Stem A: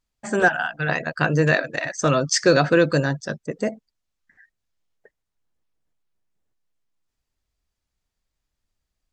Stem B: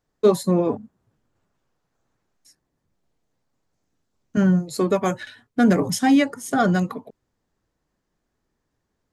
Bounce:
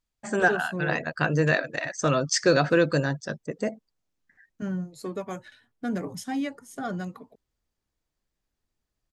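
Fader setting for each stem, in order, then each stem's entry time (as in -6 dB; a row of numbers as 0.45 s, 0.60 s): -4.0 dB, -13.0 dB; 0.00 s, 0.25 s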